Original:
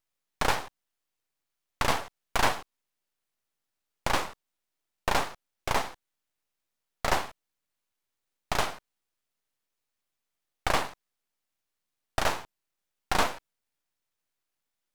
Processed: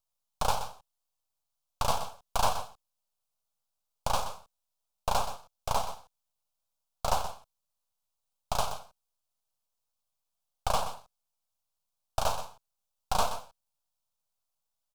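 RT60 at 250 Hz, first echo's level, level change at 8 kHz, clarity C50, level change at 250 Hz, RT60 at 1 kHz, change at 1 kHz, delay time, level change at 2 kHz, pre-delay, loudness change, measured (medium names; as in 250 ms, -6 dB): no reverb, -11.0 dB, -0.5 dB, no reverb, -8.5 dB, no reverb, -0.5 dB, 126 ms, -11.5 dB, no reverb, -2.5 dB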